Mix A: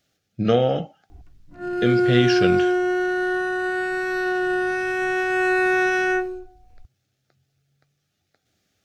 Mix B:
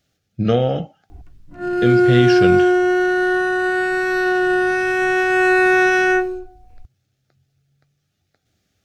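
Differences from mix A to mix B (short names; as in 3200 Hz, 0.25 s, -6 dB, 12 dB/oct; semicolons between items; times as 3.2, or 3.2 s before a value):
speech: add low shelf 140 Hz +9 dB; background +5.5 dB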